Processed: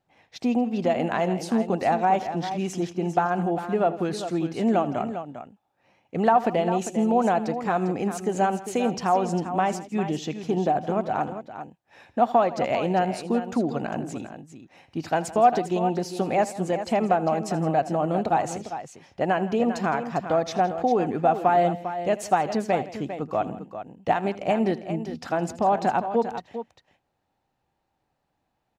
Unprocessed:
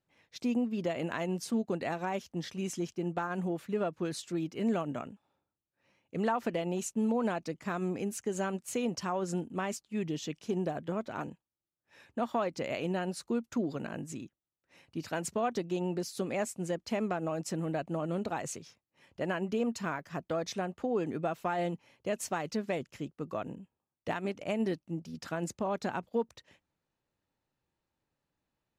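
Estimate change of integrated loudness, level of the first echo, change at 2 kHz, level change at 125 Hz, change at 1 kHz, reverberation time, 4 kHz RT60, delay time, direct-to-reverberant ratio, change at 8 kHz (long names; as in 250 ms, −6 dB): +10.0 dB, −17.5 dB, +7.0 dB, +7.5 dB, +15.0 dB, no reverb audible, no reverb audible, 80 ms, no reverb audible, +2.5 dB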